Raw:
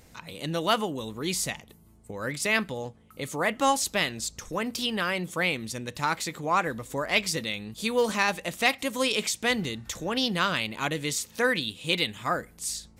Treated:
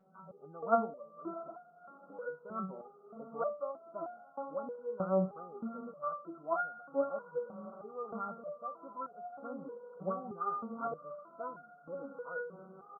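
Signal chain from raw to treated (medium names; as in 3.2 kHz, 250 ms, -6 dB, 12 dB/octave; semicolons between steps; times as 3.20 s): comb 1.6 ms, depth 44%; echo that smears into a reverb 667 ms, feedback 50%, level -14 dB; FFT band-pass 150–1500 Hz; resonator arpeggio 3.2 Hz 190–710 Hz; trim +6 dB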